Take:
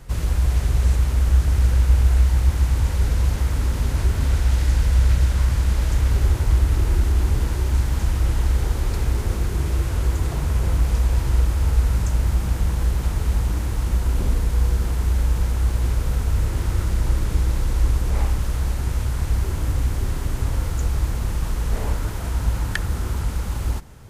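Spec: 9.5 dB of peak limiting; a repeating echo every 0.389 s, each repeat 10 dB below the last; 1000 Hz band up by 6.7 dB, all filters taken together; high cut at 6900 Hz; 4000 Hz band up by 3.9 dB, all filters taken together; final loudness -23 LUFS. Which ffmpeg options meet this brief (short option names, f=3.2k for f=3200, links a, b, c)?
-af "lowpass=6.9k,equalizer=f=1k:t=o:g=8,equalizer=f=4k:t=o:g=5,alimiter=limit=-14dB:level=0:latency=1,aecho=1:1:389|778|1167|1556:0.316|0.101|0.0324|0.0104,volume=1dB"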